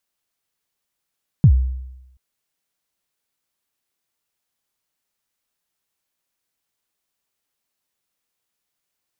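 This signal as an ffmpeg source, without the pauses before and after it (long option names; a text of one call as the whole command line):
ffmpeg -f lavfi -i "aevalsrc='0.562*pow(10,-3*t/0.93)*sin(2*PI*(170*0.074/log(64/170)*(exp(log(64/170)*min(t,0.074)/0.074)-1)+64*max(t-0.074,0)))':duration=0.73:sample_rate=44100" out.wav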